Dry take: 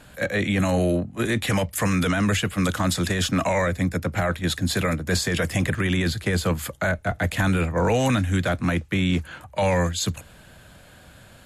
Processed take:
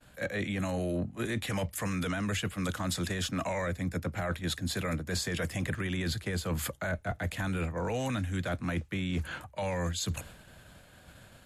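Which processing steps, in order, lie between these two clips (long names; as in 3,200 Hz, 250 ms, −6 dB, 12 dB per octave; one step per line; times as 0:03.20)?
downward expander −42 dBFS
reversed playback
downward compressor 6 to 1, threshold −30 dBFS, peak gain reduction 12.5 dB
reversed playback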